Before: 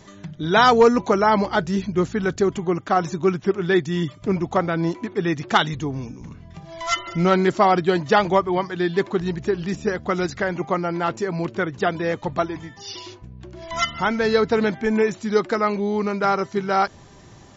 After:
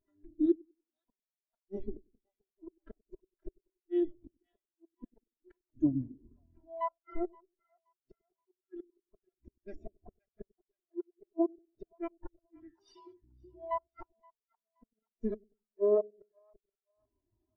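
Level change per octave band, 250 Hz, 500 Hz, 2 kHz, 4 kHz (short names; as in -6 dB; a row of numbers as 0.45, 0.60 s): -14.5 dB, -17.0 dB, -39.0 dB, under -40 dB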